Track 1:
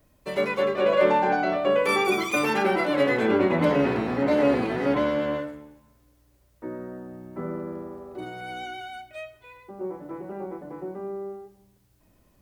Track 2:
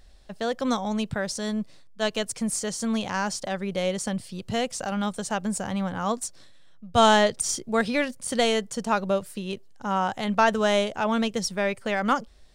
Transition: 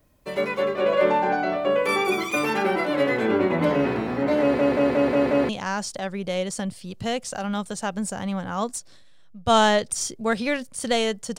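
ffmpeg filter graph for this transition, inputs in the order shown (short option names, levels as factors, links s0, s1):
-filter_complex "[0:a]apad=whole_dur=11.38,atrim=end=11.38,asplit=6[s0][s1][s2][s3][s4][s5];[s0]atrim=end=4.592[s6];[s1]atrim=start=4.408:end=4.592[s7];[s2]atrim=start=4.408:end=4.592[s8];[s3]atrim=start=4.408:end=4.592[s9];[s4]atrim=start=4.408:end=4.592[s10];[s5]atrim=start=4.408:end=4.592[s11];[1:a]atrim=start=2.968:end=8.86[s12];[s6][s7]acrossfade=d=0.004:c1=hsin:c2=hsin[s13];[s13][s8]acrossfade=d=0.004:c1=hsin:c2=hsin[s14];[s14][s9]acrossfade=d=0.004:c1=hsin:c2=hsin[s15];[s15][s10]acrossfade=d=0.004:c1=hsin:c2=hsin[s16];[s16][s11]acrossfade=d=0.004:c1=hsin:c2=hsin[s17];[s17][s12]acrossfade=d=0.004:c1=hsin:c2=hsin"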